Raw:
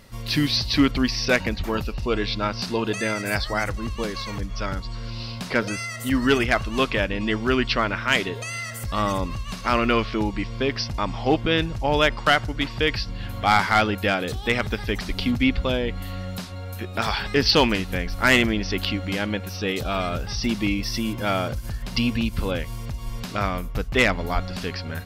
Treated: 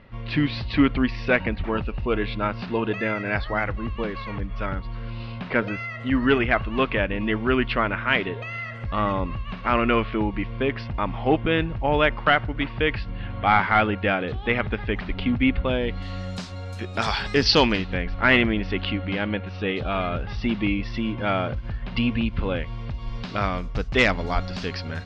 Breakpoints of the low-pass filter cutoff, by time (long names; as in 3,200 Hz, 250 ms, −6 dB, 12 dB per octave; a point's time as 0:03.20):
low-pass filter 24 dB per octave
0:15.68 2,900 Hz
0:16.25 7,700 Hz
0:17.37 7,700 Hz
0:18.05 3,200 Hz
0:22.52 3,200 Hz
0:23.87 6,000 Hz